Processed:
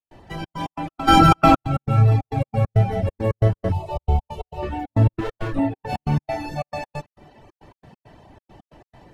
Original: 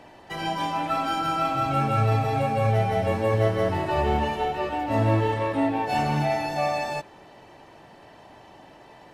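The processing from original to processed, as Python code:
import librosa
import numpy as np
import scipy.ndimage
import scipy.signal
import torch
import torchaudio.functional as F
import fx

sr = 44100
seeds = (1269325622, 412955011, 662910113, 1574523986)

y = fx.lower_of_two(x, sr, delay_ms=6.2, at=(5.13, 5.59))
y = fx.low_shelf(y, sr, hz=84.0, db=8.5)
y = fx.echo_feedback(y, sr, ms=277, feedback_pct=56, wet_db=-20.5)
y = fx.step_gate(y, sr, bpm=136, pattern='.xxx.x.x', floor_db=-60.0, edge_ms=4.5)
y = fx.low_shelf(y, sr, hz=320.0, db=10.5)
y = fx.fixed_phaser(y, sr, hz=680.0, stages=4, at=(3.72, 4.63))
y = fx.dereverb_blind(y, sr, rt60_s=1.0)
y = fx.env_flatten(y, sr, amount_pct=100, at=(1.07, 1.54), fade=0.02)
y = y * 10.0 ** (-2.5 / 20.0)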